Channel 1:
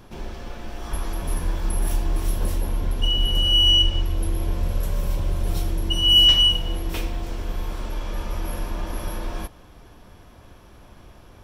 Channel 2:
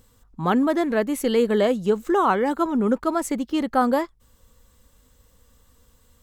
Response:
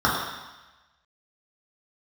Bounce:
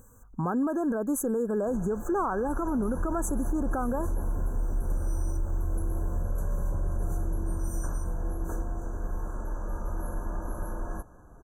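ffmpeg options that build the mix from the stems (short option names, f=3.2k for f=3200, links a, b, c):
-filter_complex "[0:a]highshelf=f=11k:g=-11.5,acontrast=34,adelay=1550,volume=-10dB[a];[1:a]acompressor=threshold=-23dB:ratio=6,volume=3dB[b];[a][b]amix=inputs=2:normalize=0,afftfilt=real='re*(1-between(b*sr/4096,1700,5900))':imag='im*(1-between(b*sr/4096,1700,5900))':win_size=4096:overlap=0.75,alimiter=limit=-21dB:level=0:latency=1:release=34"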